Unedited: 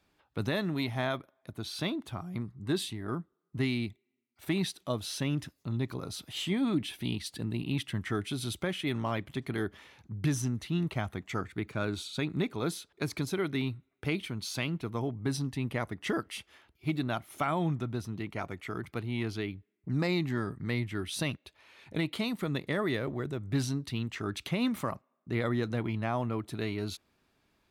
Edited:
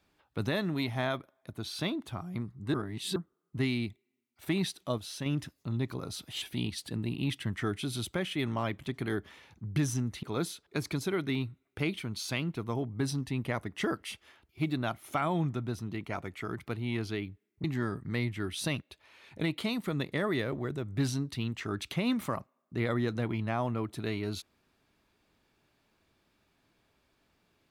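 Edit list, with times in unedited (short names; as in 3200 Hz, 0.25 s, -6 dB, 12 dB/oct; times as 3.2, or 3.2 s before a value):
2.74–3.16 reverse
4.98–5.26 gain -4.5 dB
6.42–6.9 cut
10.71–12.49 cut
19.9–20.19 cut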